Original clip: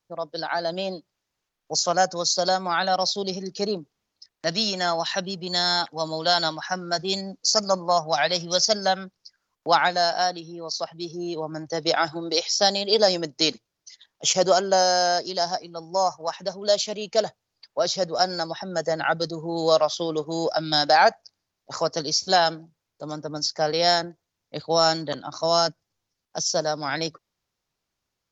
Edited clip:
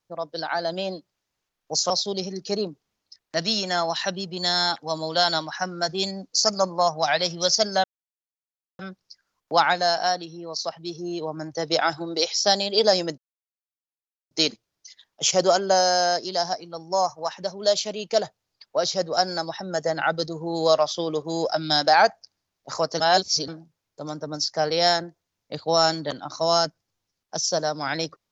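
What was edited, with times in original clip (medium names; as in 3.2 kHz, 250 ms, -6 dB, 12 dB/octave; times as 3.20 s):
1.90–3.00 s: delete
8.94 s: insert silence 0.95 s
13.33 s: insert silence 1.13 s
22.02–22.50 s: reverse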